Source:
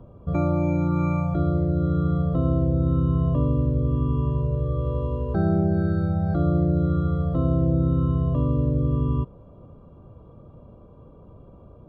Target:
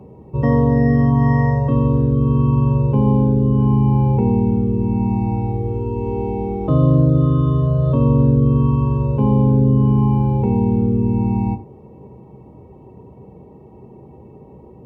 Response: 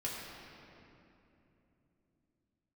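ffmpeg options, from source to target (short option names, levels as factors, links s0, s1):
-filter_complex "[0:a]highpass=150,asplit=2[s0][s1];[1:a]atrim=start_sample=2205,atrim=end_sample=3087[s2];[s1][s2]afir=irnorm=-1:irlink=0,volume=0.668[s3];[s0][s3]amix=inputs=2:normalize=0,asetrate=35280,aresample=44100,volume=1.88"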